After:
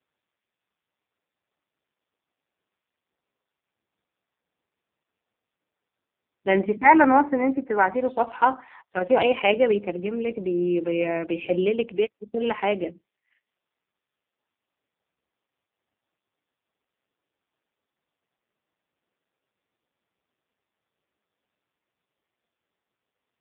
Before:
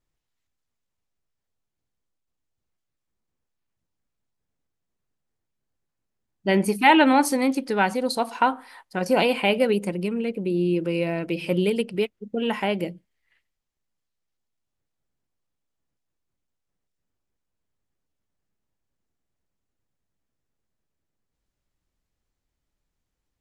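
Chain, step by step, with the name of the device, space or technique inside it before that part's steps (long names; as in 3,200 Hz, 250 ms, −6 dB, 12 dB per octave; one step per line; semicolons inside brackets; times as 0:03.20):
0:06.77–0:07.94: Chebyshev band-pass filter 150–2,100 Hz, order 4
telephone (band-pass filter 300–3,300 Hz; level +3 dB; AMR narrowband 4.75 kbit/s 8,000 Hz)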